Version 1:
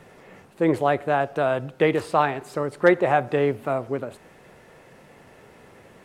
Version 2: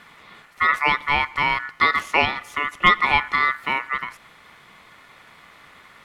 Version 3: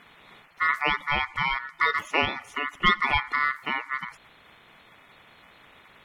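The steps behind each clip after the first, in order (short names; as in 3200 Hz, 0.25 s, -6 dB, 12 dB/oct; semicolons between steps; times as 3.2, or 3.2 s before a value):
ring modulator 1600 Hz; gain +4 dB
bin magnitudes rounded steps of 30 dB; gain -4.5 dB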